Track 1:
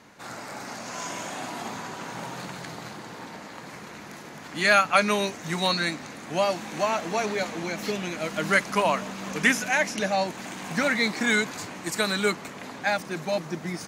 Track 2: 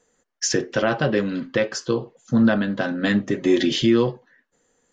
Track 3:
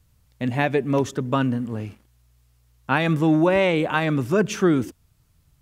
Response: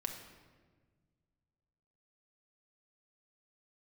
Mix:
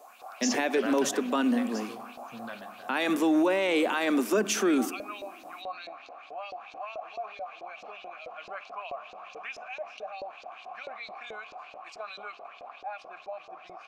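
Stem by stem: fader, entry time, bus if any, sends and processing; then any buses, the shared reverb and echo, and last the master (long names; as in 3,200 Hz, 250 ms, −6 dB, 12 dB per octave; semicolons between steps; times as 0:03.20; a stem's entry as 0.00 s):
−2.5 dB, 0.00 s, send −20 dB, formant filter a; auto-filter band-pass saw up 4.6 Hz 430–5,400 Hz; envelope flattener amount 50%
0:02.46 −3 dB → 0:02.92 −13.5 dB, 0.00 s, send −18.5 dB, high-pass filter 930 Hz 6 dB per octave; automatic ducking −16 dB, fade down 1.75 s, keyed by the third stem
−1.5 dB, 0.00 s, send −15 dB, Butterworth high-pass 210 Hz 72 dB per octave; high-shelf EQ 4,300 Hz +9.5 dB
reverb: on, RT60 1.5 s, pre-delay 5 ms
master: brickwall limiter −17 dBFS, peak gain reduction 11 dB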